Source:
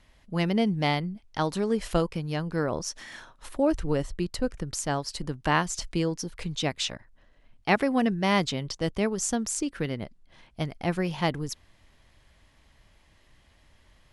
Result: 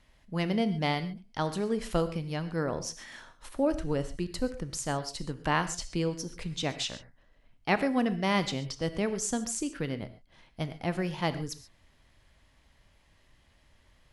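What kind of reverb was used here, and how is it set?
gated-style reverb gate 160 ms flat, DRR 11 dB; trim -3.5 dB

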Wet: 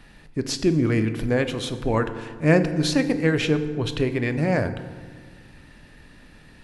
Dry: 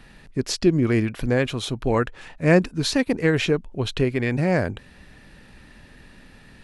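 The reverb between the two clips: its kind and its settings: FDN reverb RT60 1.6 s, low-frequency decay 1.35×, high-frequency decay 0.55×, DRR 8.5 dB; trim -1.5 dB

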